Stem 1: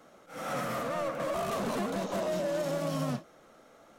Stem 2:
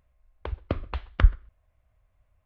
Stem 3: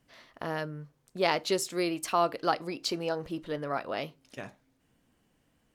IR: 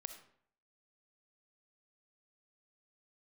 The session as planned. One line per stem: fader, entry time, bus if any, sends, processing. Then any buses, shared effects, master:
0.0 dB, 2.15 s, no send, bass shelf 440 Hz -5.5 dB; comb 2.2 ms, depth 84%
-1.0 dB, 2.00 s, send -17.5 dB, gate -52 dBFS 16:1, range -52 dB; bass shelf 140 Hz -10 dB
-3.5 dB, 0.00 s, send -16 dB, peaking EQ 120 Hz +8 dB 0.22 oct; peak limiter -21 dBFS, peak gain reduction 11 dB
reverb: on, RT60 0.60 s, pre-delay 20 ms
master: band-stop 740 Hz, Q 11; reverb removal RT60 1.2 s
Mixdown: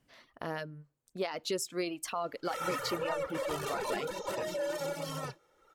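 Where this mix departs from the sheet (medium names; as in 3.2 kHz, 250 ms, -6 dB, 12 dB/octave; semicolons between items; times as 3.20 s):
stem 2: muted; stem 3: missing peaking EQ 120 Hz +8 dB 0.22 oct; master: missing band-stop 740 Hz, Q 11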